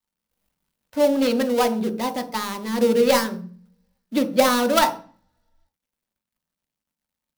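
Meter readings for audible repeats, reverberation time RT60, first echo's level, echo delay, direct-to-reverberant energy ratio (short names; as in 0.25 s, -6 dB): none, 0.40 s, none, none, 5.5 dB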